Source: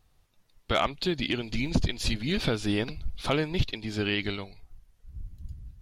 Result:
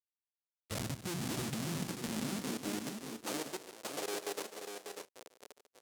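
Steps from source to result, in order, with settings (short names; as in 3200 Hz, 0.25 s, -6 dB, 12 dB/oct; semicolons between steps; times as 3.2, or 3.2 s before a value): low shelf 120 Hz +2.5 dB; notches 60/120/180/240/300/360/420 Hz; treble ducked by the level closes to 330 Hz, closed at -23 dBFS; HPF 53 Hz 24 dB/oct; Schmitt trigger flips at -39.5 dBFS; auto swell 0.107 s; bell 8300 Hz +13 dB 2.8 oct; compressor 10:1, threshold -44 dBFS, peak gain reduction 16.5 dB; high-pass sweep 92 Hz -> 470 Hz, 0.31–3.82; level quantiser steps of 16 dB; tapped delay 0.145/0.593/0.607/0.628 s -12/-6.5/-18.5/-18 dB; gain +10 dB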